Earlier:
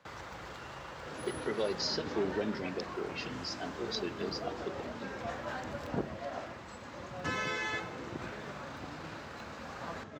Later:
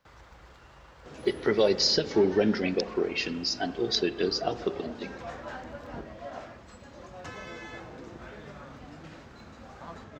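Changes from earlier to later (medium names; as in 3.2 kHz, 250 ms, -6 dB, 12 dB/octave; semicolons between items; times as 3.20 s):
speech +10.5 dB; first sound -9.0 dB; master: remove high-pass 110 Hz 12 dB/octave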